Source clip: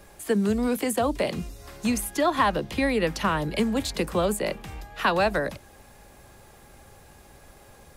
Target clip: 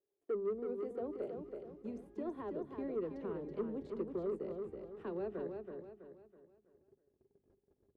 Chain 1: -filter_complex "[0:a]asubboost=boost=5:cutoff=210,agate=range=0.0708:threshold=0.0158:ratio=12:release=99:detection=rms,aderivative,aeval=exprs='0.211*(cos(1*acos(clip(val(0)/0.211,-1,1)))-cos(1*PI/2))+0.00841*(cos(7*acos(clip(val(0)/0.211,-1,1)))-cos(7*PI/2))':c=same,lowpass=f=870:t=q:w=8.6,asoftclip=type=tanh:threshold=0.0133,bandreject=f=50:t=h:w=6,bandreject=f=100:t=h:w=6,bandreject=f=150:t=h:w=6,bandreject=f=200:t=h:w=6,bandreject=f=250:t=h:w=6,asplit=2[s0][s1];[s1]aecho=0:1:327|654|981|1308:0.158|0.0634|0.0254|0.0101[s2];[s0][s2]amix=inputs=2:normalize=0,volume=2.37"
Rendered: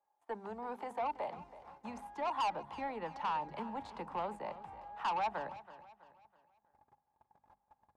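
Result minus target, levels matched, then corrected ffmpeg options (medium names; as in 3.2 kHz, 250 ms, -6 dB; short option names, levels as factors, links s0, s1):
1 kHz band +15.5 dB; echo-to-direct -10.5 dB
-filter_complex "[0:a]asubboost=boost=5:cutoff=210,agate=range=0.0708:threshold=0.0158:ratio=12:release=99:detection=rms,aderivative,aeval=exprs='0.211*(cos(1*acos(clip(val(0)/0.211,-1,1)))-cos(1*PI/2))+0.00841*(cos(7*acos(clip(val(0)/0.211,-1,1)))-cos(7*PI/2))':c=same,lowpass=f=400:t=q:w=8.6,asoftclip=type=tanh:threshold=0.0133,bandreject=f=50:t=h:w=6,bandreject=f=100:t=h:w=6,bandreject=f=150:t=h:w=6,bandreject=f=200:t=h:w=6,bandreject=f=250:t=h:w=6,asplit=2[s0][s1];[s1]aecho=0:1:327|654|981|1308|1635:0.531|0.212|0.0849|0.034|0.0136[s2];[s0][s2]amix=inputs=2:normalize=0,volume=2.37"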